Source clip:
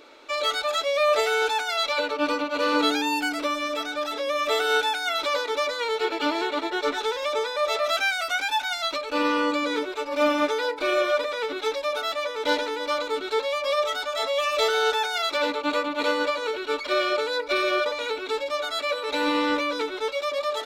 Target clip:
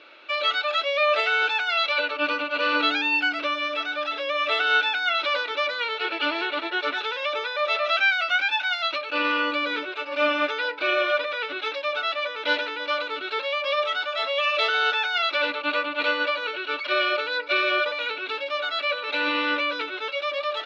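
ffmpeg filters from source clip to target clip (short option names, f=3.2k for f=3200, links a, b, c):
-af "highpass=200,equalizer=f=260:t=q:w=4:g=-8,equalizer=f=440:t=q:w=4:g=-8,equalizer=f=890:t=q:w=4:g=-5,equalizer=f=1.5k:t=q:w=4:g=5,equalizer=f=2.7k:t=q:w=4:g=9,lowpass=f=4.4k:w=0.5412,lowpass=f=4.4k:w=1.3066"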